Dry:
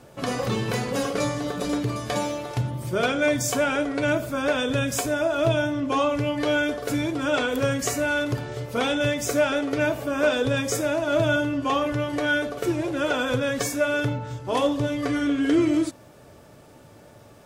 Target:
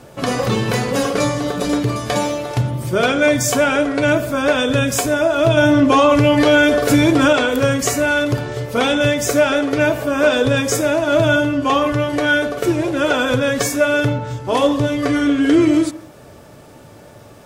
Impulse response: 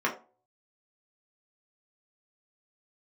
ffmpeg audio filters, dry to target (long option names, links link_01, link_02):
-filter_complex "[0:a]asettb=1/sr,asplit=3[link_01][link_02][link_03];[link_01]atrim=end=5.574[link_04];[link_02]atrim=start=5.57:end=7.33,asetpts=PTS-STARTPTS,afade=type=in:duration=0.004:curve=qsin,afade=type=out:start_time=1.756:duration=0.004:curve=qsin,acontrast=70[link_05];[link_03]atrim=start=7.326[link_06];[link_04][link_05]acrossfade=duration=0.004:curve1=hsin:curve2=qsin[link_07];[link_07][link_06]acrossfade=duration=0.004:curve1=qsin:curve2=hsin,asplit=2[link_08][link_09];[1:a]atrim=start_sample=2205,adelay=132[link_10];[link_09][link_10]afir=irnorm=-1:irlink=0,volume=-28dB[link_11];[link_08][link_11]amix=inputs=2:normalize=0,alimiter=level_in=11dB:limit=-1dB:release=50:level=0:latency=1,volume=-3.5dB"